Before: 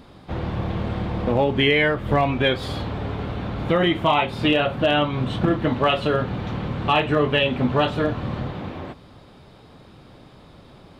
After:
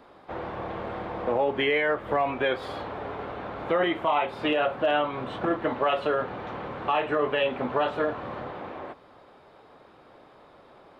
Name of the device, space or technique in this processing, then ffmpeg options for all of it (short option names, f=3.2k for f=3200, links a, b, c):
DJ mixer with the lows and highs turned down: -filter_complex "[0:a]acrossover=split=360 2100:gain=0.126 1 0.251[a][b][c];[a][b][c]amix=inputs=3:normalize=0,alimiter=limit=-15.5dB:level=0:latency=1:release=27"